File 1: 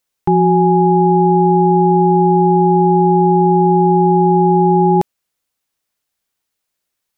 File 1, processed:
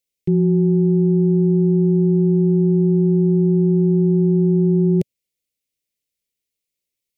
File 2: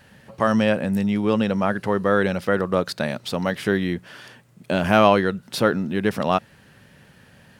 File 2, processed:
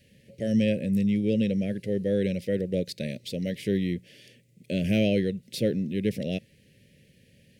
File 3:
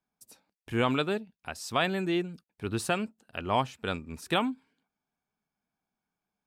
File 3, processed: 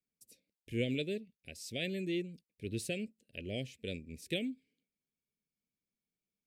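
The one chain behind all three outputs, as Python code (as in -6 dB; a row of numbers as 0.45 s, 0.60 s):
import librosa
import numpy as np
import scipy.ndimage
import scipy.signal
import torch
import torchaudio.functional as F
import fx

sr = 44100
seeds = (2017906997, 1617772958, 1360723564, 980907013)

y = fx.dynamic_eq(x, sr, hz=140.0, q=0.96, threshold_db=-29.0, ratio=4.0, max_db=7)
y = scipy.signal.sosfilt(scipy.signal.cheby1(3, 1.0, [540.0, 2100.0], 'bandstop', fs=sr, output='sos'), y)
y = y * librosa.db_to_amplitude(-6.0)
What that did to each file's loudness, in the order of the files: -4.5 LU, -6.0 LU, -8.0 LU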